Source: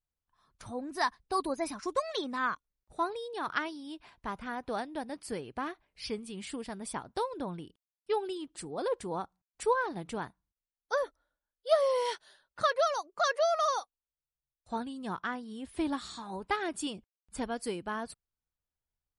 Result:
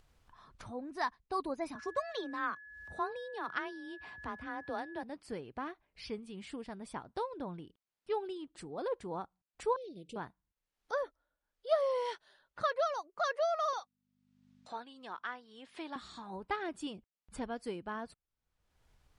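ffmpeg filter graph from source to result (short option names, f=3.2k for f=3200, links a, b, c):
-filter_complex "[0:a]asettb=1/sr,asplit=3[a][b][c];[a]atrim=end=1.754[d];[b]atrim=start=1.75:end=5.03,asetpts=PTS-STARTPTS,afade=t=in:d=0.004:c=qsin,afade=t=out:st=3.276:d=0.004:c=qsin,acompressor=mode=upward:threshold=-39dB:ratio=2.5:attack=3.2:release=140:knee=2.83:detection=peak,afreqshift=28,aeval=exprs='val(0)+0.00562*sin(2*PI*1700*n/s)':c=same[e];[c]atrim=start=5.026[f];[d][e]acrossfade=d=0.004:c1=hsin:c2=qsin[g];[g][f]acrossfade=d=0.004:c1=qsin:c2=hsin,asettb=1/sr,asplit=3[h][i][j];[h]atrim=end=9.764[k];[i]atrim=start=9.76:end=10.16,asetpts=PTS-STARTPTS,afade=t=in:d=0.004:c=qsin,afade=t=out:st=0.396:d=0.004:c=qsin,asuperstop=centerf=1200:order=12:qfactor=0.59,lowshelf=f=240:g=-10.5[l];[j]atrim=start=10.156[m];[k][l]acrossfade=d=0.004:c1=hsin:c2=qsin[n];[n][m]acrossfade=d=0.004:c1=qsin:c2=hsin,asettb=1/sr,asplit=3[o][p][q];[o]atrim=end=13.734[r];[p]atrim=start=13.73:end=15.96,asetpts=PTS-STARTPTS,afade=t=in:d=0.004:c=qsin,afade=t=out:st=2.226:d=0.004:c=qsin,tiltshelf=f=1.3k:g=-4,aeval=exprs='val(0)+0.001*(sin(2*PI*50*n/s)+sin(2*PI*2*50*n/s)/2+sin(2*PI*3*50*n/s)/3+sin(2*PI*4*50*n/s)/4+sin(2*PI*5*50*n/s)/5)':c=same,highpass=420,lowpass=6.5k[s];[q]atrim=start=15.956[t];[r][s]acrossfade=d=0.004:c1=hsin:c2=qsin[u];[u][t]acrossfade=d=0.004:c1=qsin:c2=hsin,aemphasis=mode=reproduction:type=50fm,acompressor=mode=upward:threshold=-40dB:ratio=2.5,volume=-4.5dB"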